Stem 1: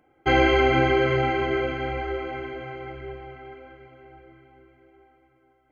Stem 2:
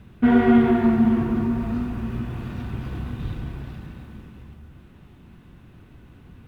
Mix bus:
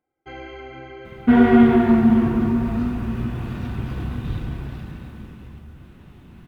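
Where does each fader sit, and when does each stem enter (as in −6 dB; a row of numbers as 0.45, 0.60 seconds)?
−18.5, +3.0 decibels; 0.00, 1.05 seconds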